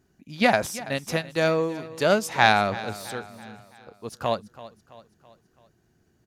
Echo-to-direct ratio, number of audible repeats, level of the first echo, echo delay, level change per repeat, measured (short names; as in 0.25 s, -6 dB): -16.0 dB, 3, -17.0 dB, 0.331 s, -6.0 dB